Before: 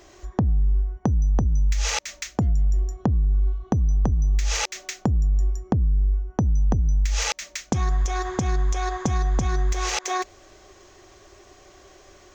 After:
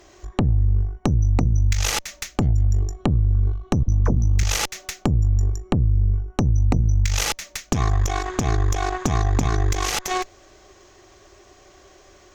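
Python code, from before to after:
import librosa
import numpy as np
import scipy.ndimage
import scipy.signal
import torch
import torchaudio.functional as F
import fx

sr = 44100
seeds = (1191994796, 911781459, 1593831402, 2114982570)

y = fx.dispersion(x, sr, late='lows', ms=45.0, hz=600.0, at=(3.83, 4.43))
y = fx.cheby_harmonics(y, sr, harmonics=(4,), levels_db=(-8,), full_scale_db=-11.0)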